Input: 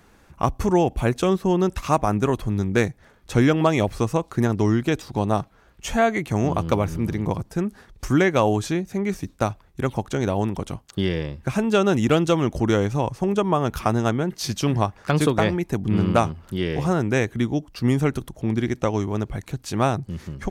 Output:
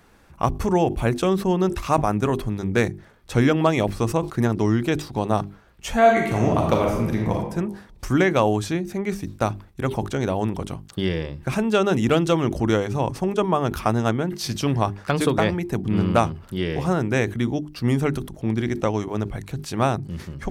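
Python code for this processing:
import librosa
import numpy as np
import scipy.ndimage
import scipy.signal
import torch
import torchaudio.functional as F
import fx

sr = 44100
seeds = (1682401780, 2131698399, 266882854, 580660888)

y = fx.reverb_throw(x, sr, start_s=5.99, length_s=1.36, rt60_s=0.85, drr_db=0.0)
y = fx.peak_eq(y, sr, hz=6600.0, db=-3.5, octaves=0.22)
y = fx.hum_notches(y, sr, base_hz=50, count=8)
y = fx.sustainer(y, sr, db_per_s=140.0)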